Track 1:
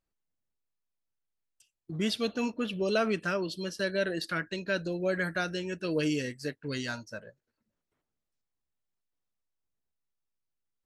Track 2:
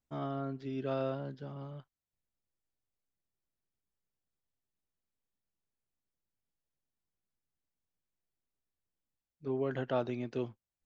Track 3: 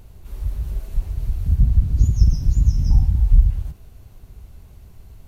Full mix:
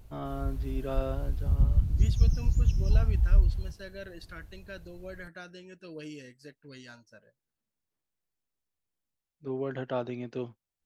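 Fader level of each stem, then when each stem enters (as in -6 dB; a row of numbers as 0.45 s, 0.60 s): -13.5 dB, +0.5 dB, -8.0 dB; 0.00 s, 0.00 s, 0.00 s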